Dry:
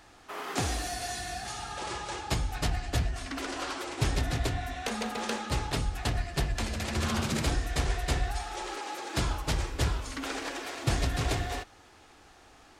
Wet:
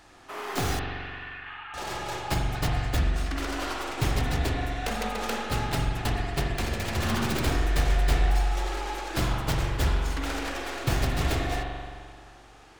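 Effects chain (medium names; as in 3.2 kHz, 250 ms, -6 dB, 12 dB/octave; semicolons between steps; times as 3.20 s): tracing distortion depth 0.14 ms; 0.79–1.74 s: elliptic band-pass 960–2900 Hz, stop band 40 dB; spring tank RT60 1.9 s, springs 43 ms, chirp 45 ms, DRR 1 dB; trim +1 dB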